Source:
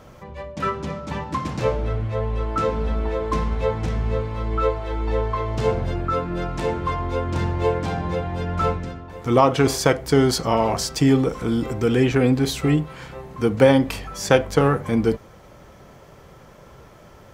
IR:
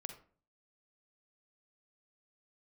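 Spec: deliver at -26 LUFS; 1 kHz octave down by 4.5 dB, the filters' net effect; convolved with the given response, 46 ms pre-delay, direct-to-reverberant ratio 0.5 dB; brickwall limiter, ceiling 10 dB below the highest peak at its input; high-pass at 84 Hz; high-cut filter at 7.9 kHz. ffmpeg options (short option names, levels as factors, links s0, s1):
-filter_complex "[0:a]highpass=84,lowpass=7900,equalizer=f=1000:t=o:g=-6,alimiter=limit=0.266:level=0:latency=1,asplit=2[s0][s1];[1:a]atrim=start_sample=2205,adelay=46[s2];[s1][s2]afir=irnorm=-1:irlink=0,volume=1.41[s3];[s0][s3]amix=inputs=2:normalize=0,volume=0.631"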